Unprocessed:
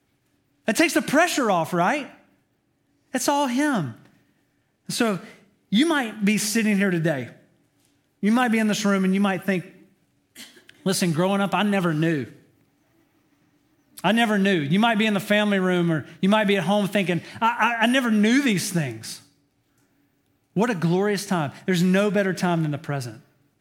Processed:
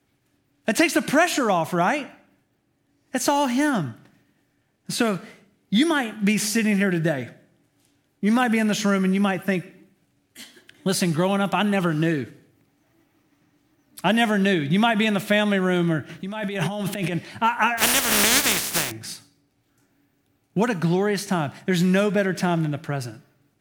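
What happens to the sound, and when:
3.26–3.70 s: jump at every zero crossing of -34.5 dBFS
16.09–17.16 s: compressor with a negative ratio -27 dBFS
17.77–18.90 s: spectral contrast reduction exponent 0.26

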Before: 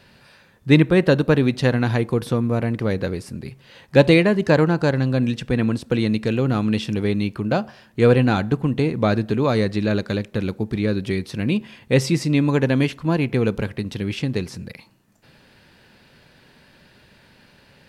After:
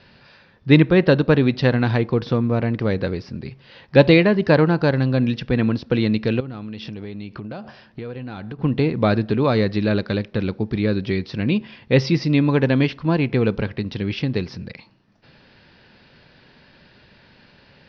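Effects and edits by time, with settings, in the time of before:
6.40–8.59 s: compression 16:1, threshold -29 dBFS
whole clip: steep low-pass 5.5 kHz 72 dB/octave; trim +1 dB

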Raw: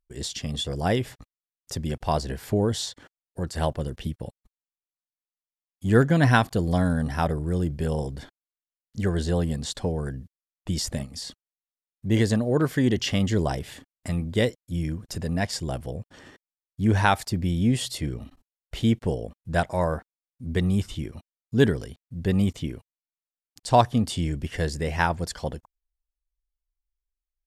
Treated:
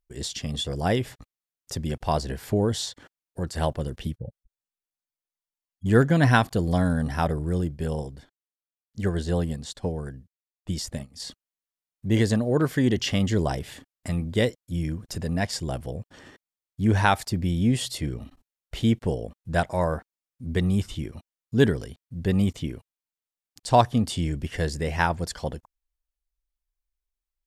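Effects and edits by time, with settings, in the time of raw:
4.17–5.86 s: spectral contrast enhancement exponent 2.1
7.61–11.20 s: upward expansion, over -46 dBFS

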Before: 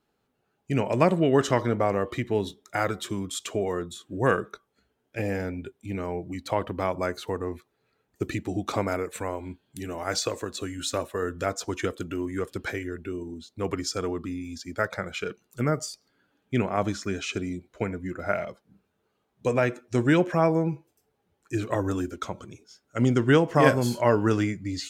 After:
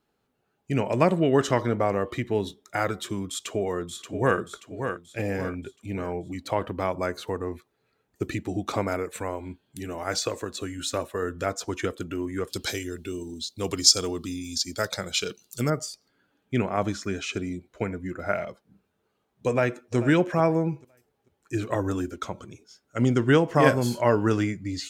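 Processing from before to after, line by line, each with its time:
3.29–4.38 s: echo throw 580 ms, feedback 45%, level -7.5 dB
12.50–15.70 s: resonant high shelf 2.8 kHz +13 dB, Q 1.5
19.48–19.96 s: echo throw 440 ms, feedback 25%, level -15 dB

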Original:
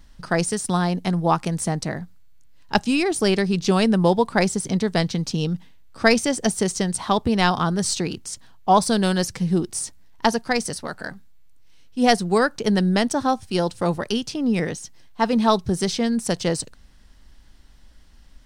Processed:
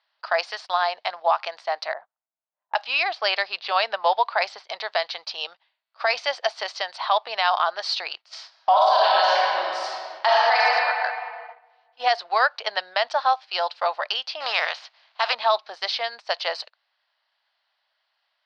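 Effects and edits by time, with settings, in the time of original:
1.93–4.64 s: level-controlled noise filter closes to 600 Hz, open at -14.5 dBFS
8.21–10.59 s: reverb throw, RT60 2.3 s, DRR -6 dB
14.40–15.33 s: spectral contrast reduction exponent 0.58
whole clip: Chebyshev band-pass 630–4600 Hz, order 4; gate -44 dBFS, range -14 dB; peak limiter -14.5 dBFS; trim +5 dB

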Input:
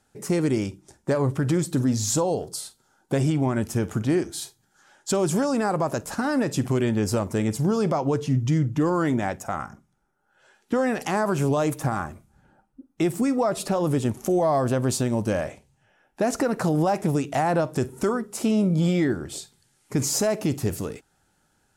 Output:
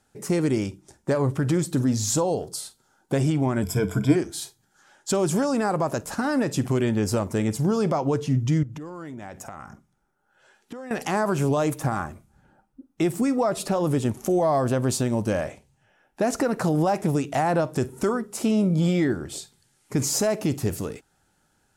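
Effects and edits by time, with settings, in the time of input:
3.62–4.16 s: rippled EQ curve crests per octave 1.7, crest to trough 15 dB
8.63–10.91 s: compression 16:1, threshold -33 dBFS

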